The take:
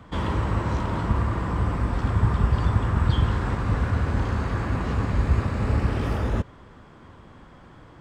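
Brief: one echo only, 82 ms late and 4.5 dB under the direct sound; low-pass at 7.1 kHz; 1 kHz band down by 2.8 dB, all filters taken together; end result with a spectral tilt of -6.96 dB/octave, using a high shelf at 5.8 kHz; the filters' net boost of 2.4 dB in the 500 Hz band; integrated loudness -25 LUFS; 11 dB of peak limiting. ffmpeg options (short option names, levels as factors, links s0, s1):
-af "lowpass=7100,equalizer=f=500:t=o:g=4,equalizer=f=1000:t=o:g=-4.5,highshelf=f=5800:g=5,alimiter=limit=0.106:level=0:latency=1,aecho=1:1:82:0.596,volume=1.33"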